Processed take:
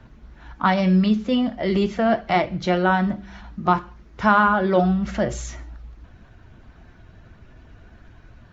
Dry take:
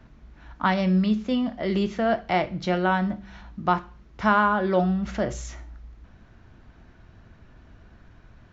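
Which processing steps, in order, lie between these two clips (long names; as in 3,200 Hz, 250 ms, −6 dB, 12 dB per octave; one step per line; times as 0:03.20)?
spectral magnitudes quantised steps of 15 dB
level +4 dB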